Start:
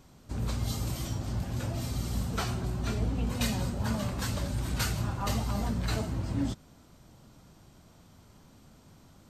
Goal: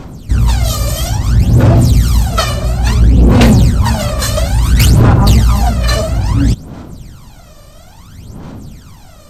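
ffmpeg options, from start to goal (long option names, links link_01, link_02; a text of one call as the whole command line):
ffmpeg -i in.wav -af "aphaser=in_gain=1:out_gain=1:delay=1.7:decay=0.78:speed=0.59:type=sinusoidal,aeval=exprs='0.531*sin(PI/2*2.51*val(0)/0.531)':channel_layout=same,volume=4dB" out.wav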